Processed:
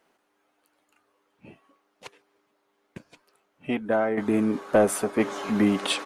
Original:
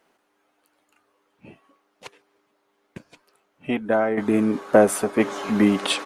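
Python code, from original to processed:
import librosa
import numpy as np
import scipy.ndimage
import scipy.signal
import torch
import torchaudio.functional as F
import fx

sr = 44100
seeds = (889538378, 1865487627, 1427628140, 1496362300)

y = 10.0 ** (-8.0 / 20.0) * np.tanh(x / 10.0 ** (-8.0 / 20.0))
y = y * librosa.db_to_amplitude(-2.5)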